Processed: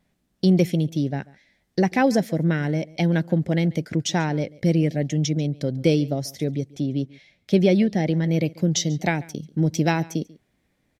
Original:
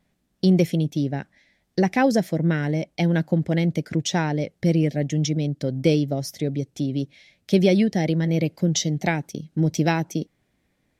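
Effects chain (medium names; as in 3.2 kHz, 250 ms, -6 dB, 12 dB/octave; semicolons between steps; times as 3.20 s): 6.75–8.24 s: treble shelf 4.6 kHz -7.5 dB; delay 140 ms -22.5 dB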